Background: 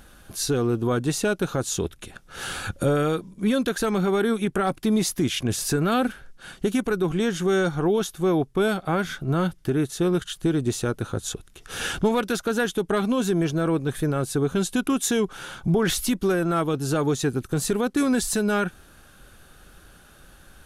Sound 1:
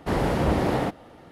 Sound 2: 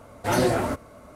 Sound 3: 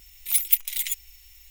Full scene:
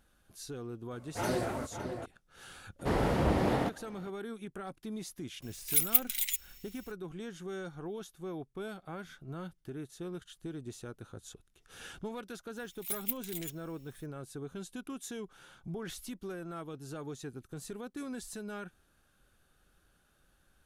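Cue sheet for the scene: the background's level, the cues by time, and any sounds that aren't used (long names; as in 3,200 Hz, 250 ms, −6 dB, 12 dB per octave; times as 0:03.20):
background −19 dB
0:00.91: mix in 2 −11 dB + slap from a distant wall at 96 metres, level −7 dB
0:02.79: mix in 1 −5.5 dB
0:05.42: mix in 3 −5 dB
0:12.56: mix in 3 −15 dB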